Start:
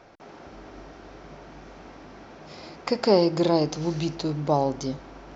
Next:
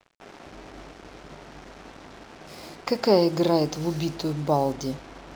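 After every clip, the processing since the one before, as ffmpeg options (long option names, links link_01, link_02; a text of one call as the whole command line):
ffmpeg -i in.wav -af "acrusher=bits=6:mix=0:aa=0.5" out.wav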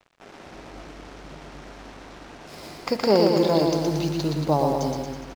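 ffmpeg -i in.wav -af "aecho=1:1:120|228|325.2|412.7|491.4:0.631|0.398|0.251|0.158|0.1" out.wav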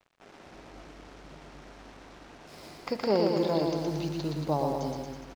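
ffmpeg -i in.wav -filter_complex "[0:a]acrossover=split=5000[link_01][link_02];[link_02]acompressor=threshold=-43dB:ratio=4:attack=1:release=60[link_03];[link_01][link_03]amix=inputs=2:normalize=0,volume=-7dB" out.wav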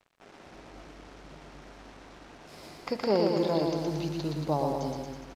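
ffmpeg -i in.wav -ar 32000 -c:a sbc -b:a 192k out.sbc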